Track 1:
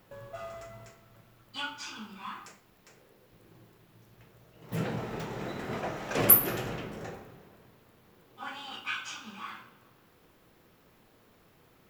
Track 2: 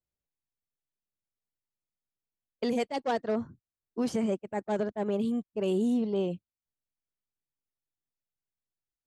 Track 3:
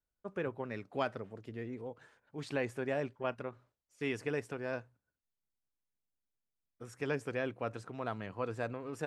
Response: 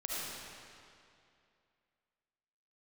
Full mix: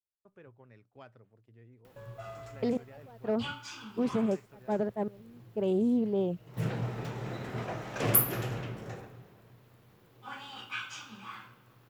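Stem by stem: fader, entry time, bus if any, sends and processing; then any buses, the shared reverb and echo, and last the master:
-3.0 dB, 1.85 s, no send, upward compressor, threshold -55 dBFS
0.0 dB, 0.00 s, no send, treble shelf 2.2 kHz -11 dB; trance gate "xx..xxxxx." 65 bpm -24 dB
-18.0 dB, 0.00 s, no send, none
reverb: none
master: gate with hold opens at -57 dBFS; peaking EQ 120 Hz +11 dB 0.31 oct; loudspeaker Doppler distortion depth 0.14 ms

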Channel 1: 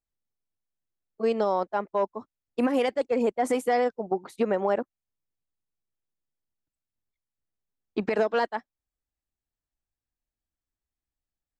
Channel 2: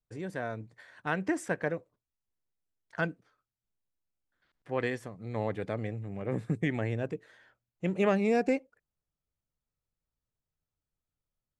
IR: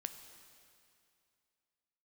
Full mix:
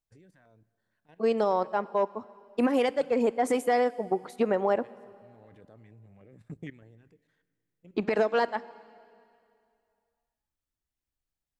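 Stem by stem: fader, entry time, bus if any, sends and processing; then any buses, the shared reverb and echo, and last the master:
-3.5 dB, 0.00 s, send -4.5 dB, none
-9.0 dB, 0.00 s, send -12.5 dB, level held to a coarse grid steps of 15 dB; step-sequenced notch 6.6 Hz 330–2300 Hz; auto duck -23 dB, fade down 1.15 s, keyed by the first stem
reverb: on, RT60 2.5 s, pre-delay 5 ms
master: none

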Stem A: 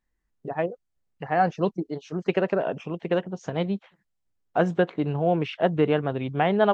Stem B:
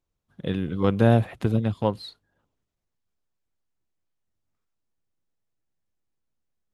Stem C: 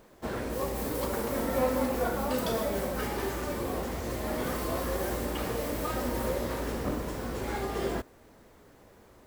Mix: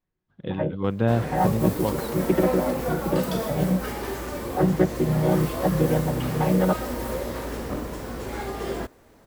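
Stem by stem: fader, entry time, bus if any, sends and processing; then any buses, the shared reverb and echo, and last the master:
+2.0 dB, 0.00 s, no send, vocoder on a held chord major triad, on B2
-3.5 dB, 0.00 s, no send, low-pass 3.8 kHz 12 dB/octave
+1.5 dB, 0.85 s, no send, none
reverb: none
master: none

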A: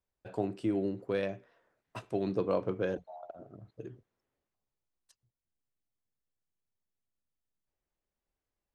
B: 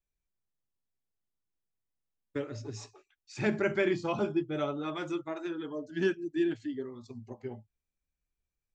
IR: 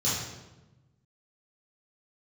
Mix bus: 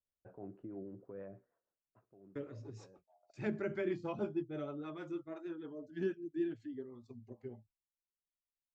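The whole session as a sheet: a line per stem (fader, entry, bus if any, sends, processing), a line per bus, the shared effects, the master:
1.38 s -9 dB -> 1.80 s -22 dB, 0.00 s, no send, low-pass 1.5 kHz 24 dB/octave; peak limiter -28.5 dBFS, peak gain reduction 10.5 dB
-6.0 dB, 0.00 s, no send, treble shelf 2.2 kHz -10 dB; gate with hold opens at -47 dBFS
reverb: none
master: rotary cabinet horn 6.3 Hz

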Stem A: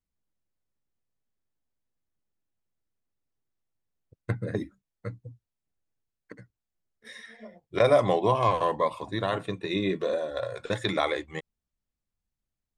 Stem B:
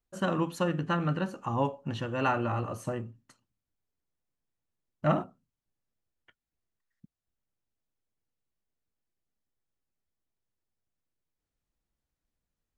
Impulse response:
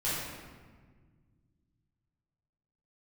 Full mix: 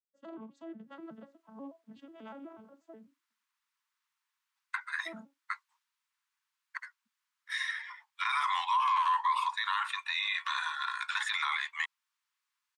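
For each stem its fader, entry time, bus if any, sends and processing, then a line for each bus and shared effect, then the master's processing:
+1.0 dB, 0.45 s, no send, steep high-pass 920 Hz 96 dB/octave; treble shelf 5.6 kHz -10.5 dB; level rider gain up to 12 dB
-16.0 dB, 0.00 s, no send, vocoder on a broken chord major triad, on A3, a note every 122 ms; peak limiter -24.5 dBFS, peak gain reduction 7.5 dB; three bands expanded up and down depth 100%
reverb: none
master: peak limiter -21.5 dBFS, peak gain reduction 17 dB

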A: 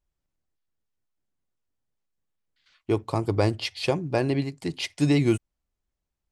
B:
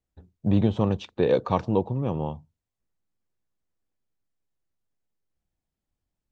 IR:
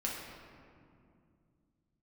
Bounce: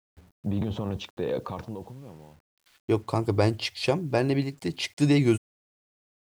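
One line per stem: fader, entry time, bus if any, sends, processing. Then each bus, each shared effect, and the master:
0.0 dB, 0.00 s, no send, none
-6.0 dB, 0.00 s, no send, transient shaper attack +2 dB, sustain +8 dB; peak limiter -13.5 dBFS, peak gain reduction 6 dB; auto duck -23 dB, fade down 1.30 s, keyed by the first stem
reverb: none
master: word length cut 10-bit, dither none

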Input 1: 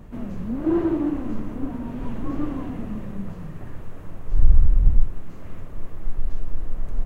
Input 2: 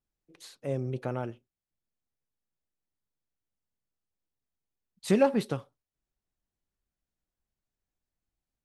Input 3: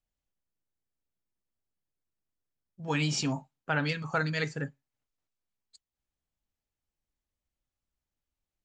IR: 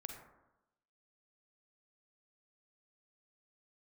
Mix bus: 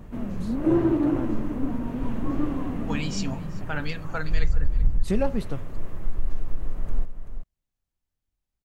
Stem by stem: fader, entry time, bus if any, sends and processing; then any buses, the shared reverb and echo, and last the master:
+0.5 dB, 0.00 s, no send, echo send -9.5 dB, compression, threshold -15 dBFS, peak gain reduction 10.5 dB
-4.5 dB, 0.00 s, no send, no echo send, bass shelf 160 Hz +11 dB
-2.5 dB, 0.00 s, no send, echo send -21.5 dB, auto duck -9 dB, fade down 0.85 s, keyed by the second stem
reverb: none
echo: delay 384 ms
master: none

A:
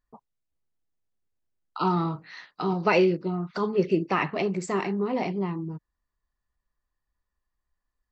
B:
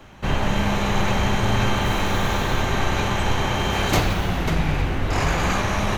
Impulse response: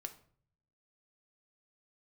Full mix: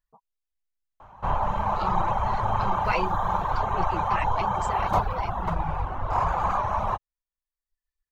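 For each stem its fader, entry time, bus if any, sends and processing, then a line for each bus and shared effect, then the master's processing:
-4.5 dB, 0.00 s, no send, comb 6.2 ms, depth 57%
-3.5 dB, 1.00 s, no send, FFT filter 400 Hz 0 dB, 1 kHz +13 dB, 1.9 kHz -10 dB, 5.5 kHz -16 dB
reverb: none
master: reverb removal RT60 0.87 s; peaking EQ 280 Hz -10.5 dB 1.7 oct

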